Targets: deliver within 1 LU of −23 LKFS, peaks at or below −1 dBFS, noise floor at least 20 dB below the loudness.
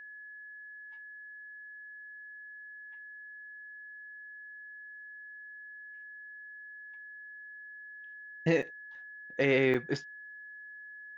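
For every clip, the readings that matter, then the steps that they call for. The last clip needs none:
number of dropouts 2; longest dropout 5.8 ms; interfering tone 1,700 Hz; level of the tone −45 dBFS; integrated loudness −38.0 LKFS; sample peak −14.0 dBFS; target loudness −23.0 LKFS
→ repair the gap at 0:08.62/0:09.74, 5.8 ms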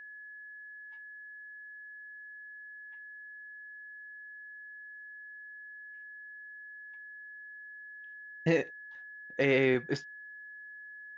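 number of dropouts 0; interfering tone 1,700 Hz; level of the tone −45 dBFS
→ notch filter 1,700 Hz, Q 30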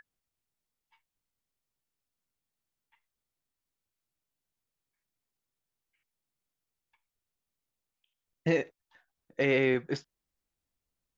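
interfering tone none found; integrated loudness −29.5 LKFS; sample peak −14.0 dBFS; target loudness −23.0 LKFS
→ level +6.5 dB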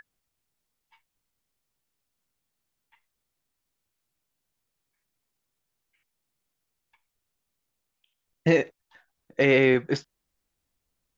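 integrated loudness −23.0 LKFS; sample peak −7.5 dBFS; background noise floor −82 dBFS

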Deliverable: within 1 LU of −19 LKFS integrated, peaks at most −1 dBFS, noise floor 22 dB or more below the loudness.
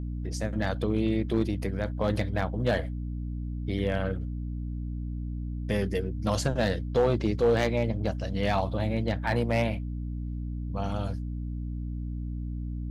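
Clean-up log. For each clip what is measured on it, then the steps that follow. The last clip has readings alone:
share of clipped samples 0.4%; peaks flattened at −16.5 dBFS; mains hum 60 Hz; hum harmonics up to 300 Hz; level of the hum −31 dBFS; integrated loudness −30.0 LKFS; sample peak −16.5 dBFS; target loudness −19.0 LKFS
→ clipped peaks rebuilt −16.5 dBFS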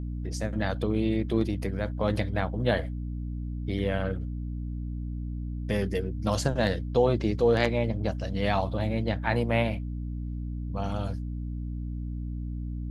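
share of clipped samples 0.0%; mains hum 60 Hz; hum harmonics up to 300 Hz; level of the hum −31 dBFS
→ mains-hum notches 60/120/180/240/300 Hz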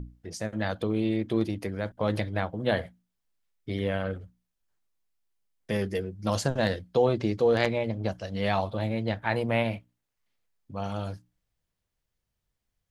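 mains hum none found; integrated loudness −29.0 LKFS; sample peak −8.0 dBFS; target loudness −19.0 LKFS
→ level +10 dB
brickwall limiter −1 dBFS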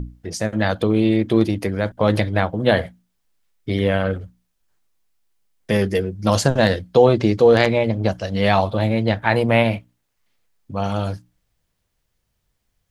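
integrated loudness −19.0 LKFS; sample peak −1.0 dBFS; background noise floor −73 dBFS

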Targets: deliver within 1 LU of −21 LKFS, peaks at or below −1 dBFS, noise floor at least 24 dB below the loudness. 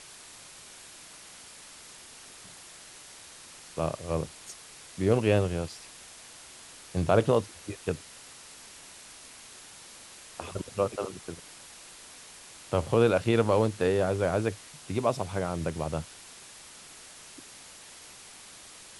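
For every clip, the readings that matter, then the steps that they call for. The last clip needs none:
background noise floor −49 dBFS; target noise floor −53 dBFS; integrated loudness −29.0 LKFS; sample peak −9.0 dBFS; target loudness −21.0 LKFS
→ broadband denoise 6 dB, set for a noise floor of −49 dBFS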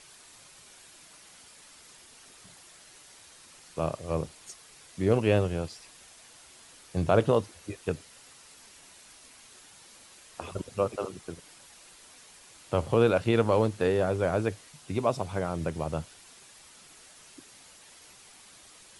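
background noise floor −54 dBFS; integrated loudness −28.5 LKFS; sample peak −9.0 dBFS; target loudness −21.0 LKFS
→ level +7.5 dB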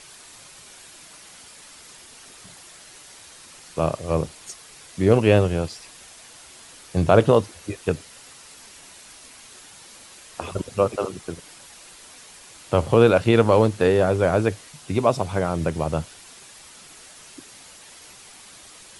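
integrated loudness −21.0 LKFS; sample peak −1.5 dBFS; background noise floor −46 dBFS

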